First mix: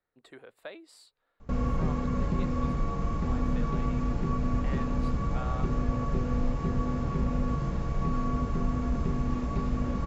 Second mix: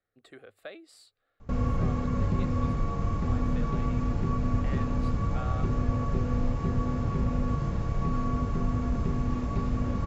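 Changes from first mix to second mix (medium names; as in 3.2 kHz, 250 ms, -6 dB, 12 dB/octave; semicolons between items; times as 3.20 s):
speech: add Butterworth band-stop 950 Hz, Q 4.3; master: add peaking EQ 100 Hz +12 dB 0.21 oct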